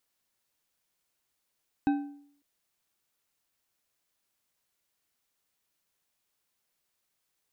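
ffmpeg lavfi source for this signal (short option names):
-f lavfi -i "aevalsrc='0.1*pow(10,-3*t/0.62)*sin(2*PI*286*t)+0.0376*pow(10,-3*t/0.457)*sin(2*PI*788.5*t)+0.0141*pow(10,-3*t/0.374)*sin(2*PI*1545.5*t)+0.00531*pow(10,-3*t/0.321)*sin(2*PI*2554.8*t)+0.002*pow(10,-3*t/0.285)*sin(2*PI*3815.2*t)':d=0.55:s=44100"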